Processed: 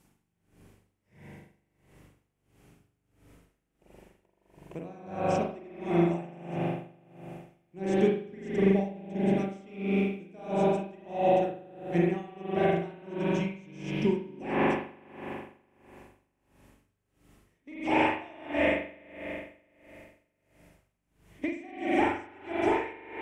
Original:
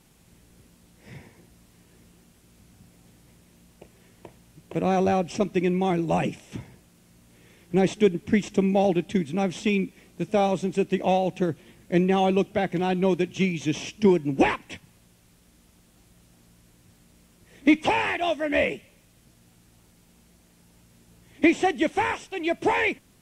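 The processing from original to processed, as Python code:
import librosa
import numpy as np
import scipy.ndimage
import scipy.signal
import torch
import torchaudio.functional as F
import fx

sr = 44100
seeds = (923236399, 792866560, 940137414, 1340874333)

y = fx.peak_eq(x, sr, hz=3800.0, db=-5.5, octaves=0.64)
y = fx.rev_spring(y, sr, rt60_s=3.0, pass_ms=(41,), chirp_ms=60, drr_db=-7.0)
y = y * 10.0 ** (-24 * (0.5 - 0.5 * np.cos(2.0 * np.pi * 1.5 * np.arange(len(y)) / sr)) / 20.0)
y = y * librosa.db_to_amplitude(-6.5)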